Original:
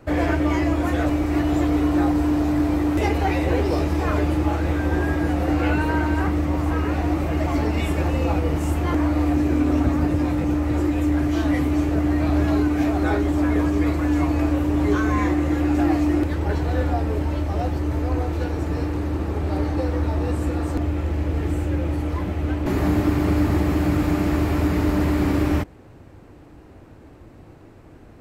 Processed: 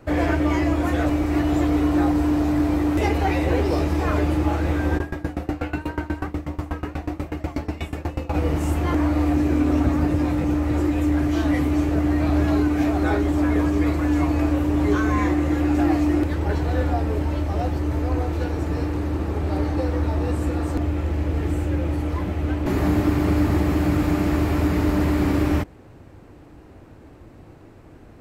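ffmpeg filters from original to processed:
-filter_complex "[0:a]asplit=3[a][b][c];[a]afade=t=out:st=4.97:d=0.02[d];[b]aeval=exprs='val(0)*pow(10,-22*if(lt(mod(8.2*n/s,1),2*abs(8.2)/1000),1-mod(8.2*n/s,1)/(2*abs(8.2)/1000),(mod(8.2*n/s,1)-2*abs(8.2)/1000)/(1-2*abs(8.2)/1000))/20)':c=same,afade=t=in:st=4.97:d=0.02,afade=t=out:st=8.33:d=0.02[e];[c]afade=t=in:st=8.33:d=0.02[f];[d][e][f]amix=inputs=3:normalize=0"

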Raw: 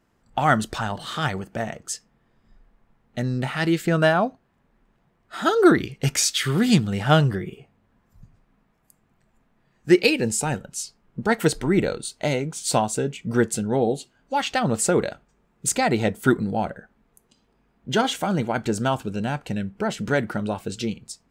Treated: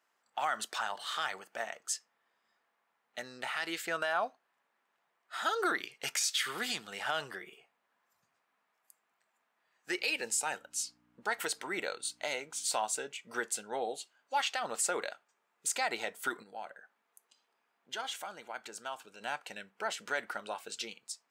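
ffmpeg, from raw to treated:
-filter_complex "[0:a]asettb=1/sr,asplit=3[a][b][c];[a]atrim=end=9.894[d];[b]atrim=start=9.89:end=12.69,asetpts=PTS-STARTPTS,afade=t=in:d=0.004:c=qsin,afade=t=out:st=2.796:d=0.004:c=qsin,aeval=exprs='val(0)+0.0158*(sin(2*PI*60*n/s)+sin(2*PI*2*60*n/s)/2+sin(2*PI*3*60*n/s)/3+sin(2*PI*4*60*n/s)/4+sin(2*PI*5*60*n/s)/5)':c=same[e];[c]atrim=start=12.686[f];[d][e]acrossfade=d=0.004:c1=hsin:c2=qsin[g];[g][f]acrossfade=d=0.004:c1=qsin:c2=hsin,asplit=3[h][i][j];[h]afade=t=out:st=16.42:d=0.02[k];[i]acompressor=threshold=-42dB:ratio=1.5:attack=3.2:release=140:knee=1:detection=peak,afade=t=in:st=16.42:d=0.02,afade=t=out:st=19.2:d=0.02[l];[j]afade=t=in:st=19.2:d=0.02[m];[k][l][m]amix=inputs=3:normalize=0,highpass=840,alimiter=limit=-16.5dB:level=0:latency=1:release=70,volume=-4.5dB"

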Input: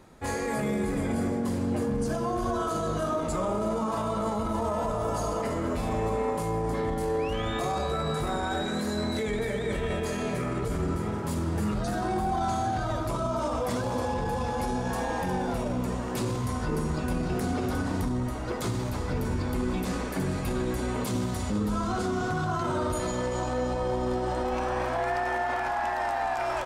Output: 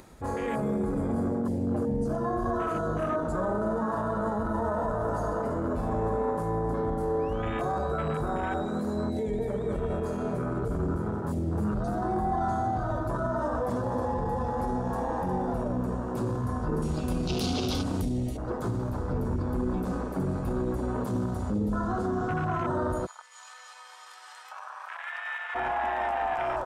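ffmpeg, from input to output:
-filter_complex "[0:a]asettb=1/sr,asplit=3[a][b][c];[a]atrim=end=16.824[d];[b]atrim=start=16.82:end=18.37,asetpts=PTS-STARTPTS,afade=t=in:d=0.004:c=qsin,afade=t=out:st=1.546:d=0.004:c=qsin,highshelf=f=2k:t=q:w=1.5:g=11[e];[c]atrim=start=18.366[f];[d][e]acrossfade=d=0.004:c1=hsin:c2=qsin[g];[g][f]acrossfade=d=0.004:c1=qsin:c2=hsin,asplit=3[h][i][j];[h]afade=t=out:st=23.05:d=0.02[k];[i]highpass=f=1.2k:w=0.5412,highpass=f=1.2k:w=1.3066,afade=t=in:st=23.05:d=0.02,afade=t=out:st=25.54:d=0.02[l];[j]afade=t=in:st=25.54:d=0.02[m];[k][l][m]amix=inputs=3:normalize=0,highshelf=f=6.1k:g=6,afwtdn=0.0224,acompressor=mode=upward:threshold=-37dB:ratio=2.5"

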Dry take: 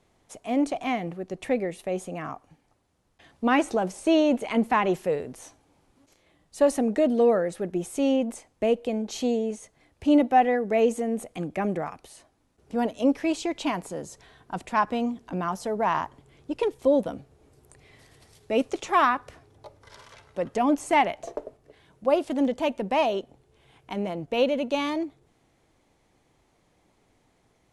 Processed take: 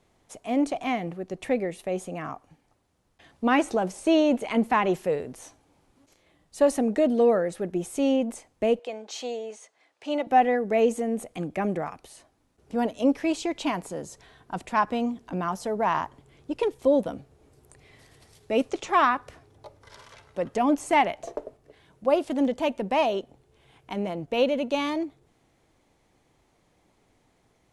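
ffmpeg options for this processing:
-filter_complex "[0:a]asettb=1/sr,asplit=3[a][b][c];[a]atrim=end=8.794[d];[b]atrim=start=8.79:end=10.27,asetpts=PTS-STARTPTS,afade=t=in:d=0.004:c=qsin,afade=t=out:st=1.476:d=0.004:c=qsin,highpass=590,lowpass=7.4k[e];[c]atrim=start=10.266[f];[d][e]acrossfade=d=0.004:c1=hsin:c2=qsin[g];[g][f]acrossfade=d=0.004:c1=qsin:c2=hsin,asettb=1/sr,asplit=3[h][i][j];[h]atrim=end=18.694[k];[i]atrim=start=18.69:end=19.12,asetpts=PTS-STARTPTS,afade=t=in:d=0.004:c=qsin,afade=t=out:st=0.426:d=0.004:c=qsin,lowpass=8.5k[l];[j]atrim=start=19.116[m];[k][l]acrossfade=d=0.004:c1=hsin:c2=qsin[n];[n][m]acrossfade=d=0.004:c1=qsin:c2=hsin"

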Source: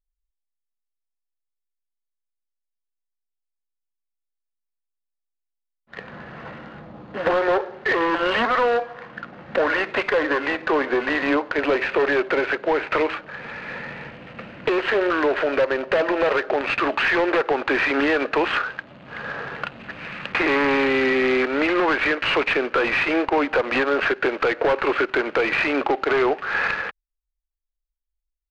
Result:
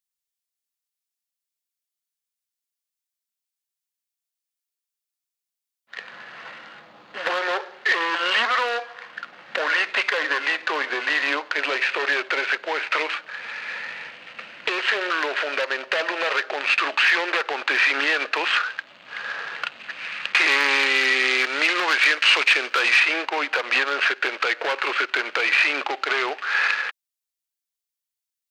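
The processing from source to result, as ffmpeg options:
-filter_complex "[0:a]asettb=1/sr,asplit=3[a][b][c];[a]atrim=end=20.344[d];[b]atrim=start=20.34:end=23,asetpts=PTS-STARTPTS,afade=t=in:d=0.004:c=qsin,afade=t=out:st=2.656:d=0.004:c=qsin,highshelf=f=5.2k:g=9.5[e];[c]atrim=start=22.996[f];[d][e]acrossfade=d=0.004:c1=hsin:c2=qsin[g];[g][f]acrossfade=d=0.004:c1=qsin:c2=hsin,highpass=f=1.4k:p=1,highshelf=f=2.1k:g=10"

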